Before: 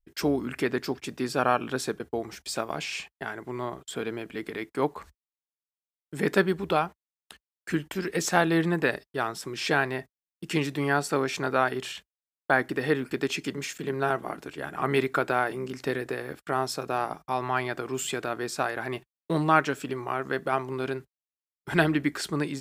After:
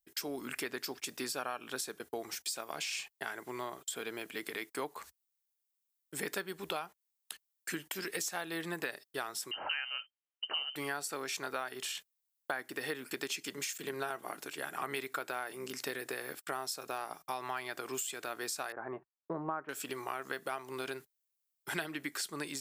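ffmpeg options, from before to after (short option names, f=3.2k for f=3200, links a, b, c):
-filter_complex "[0:a]asettb=1/sr,asplit=3[a][b][c];[a]atrim=end=9.514[d];[b]atrim=start=9.51:end=10.76,asetpts=PTS-STARTPTS,afade=t=in:d=0.004:c=qsin,afade=t=out:st=1.246:d=0.004:c=qsin,lowpass=f=2.7k:t=q:w=0.5098,lowpass=f=2.7k:t=q:w=0.6013,lowpass=f=2.7k:t=q:w=0.9,lowpass=f=2.7k:t=q:w=2.563,afreqshift=-3200[e];[c]atrim=start=10.756[f];[d][e]acrossfade=d=0.004:c1=hsin:c2=qsin[g];[g][f]acrossfade=d=0.004:c1=qsin:c2=hsin,asettb=1/sr,asplit=3[h][i][j];[h]atrim=end=18.724[k];[i]atrim=start=18.72:end=19.69,asetpts=PTS-STARTPTS,afade=t=in:d=0.004:c=qsin,afade=t=out:st=0.966:d=0.004:c=qsin,lowpass=f=1.3k:w=0.5412,lowpass=f=1.3k:w=1.3066[l];[j]atrim=start=19.686[m];[k][l]acrossfade=d=0.004:c1=hsin:c2=qsin[n];[n][m]acrossfade=d=0.004:c1=qsin:c2=hsin,aemphasis=mode=production:type=riaa,acompressor=threshold=-31dB:ratio=6,highshelf=f=12k:g=-8.5,volume=-3dB"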